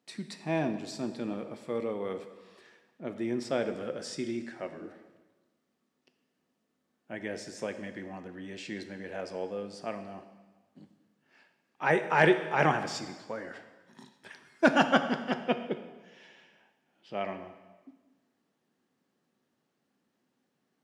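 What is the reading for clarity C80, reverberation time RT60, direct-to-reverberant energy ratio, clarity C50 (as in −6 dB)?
11.5 dB, 1.3 s, 8.0 dB, 10.5 dB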